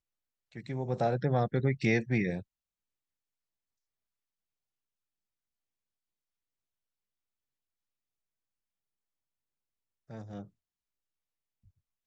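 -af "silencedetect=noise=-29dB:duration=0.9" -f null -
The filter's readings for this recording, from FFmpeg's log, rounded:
silence_start: 2.37
silence_end: 12.06 | silence_duration: 9.69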